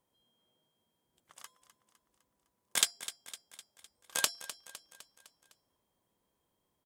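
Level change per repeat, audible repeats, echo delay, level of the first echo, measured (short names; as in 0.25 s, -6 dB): -5.5 dB, 4, 0.254 s, -14.0 dB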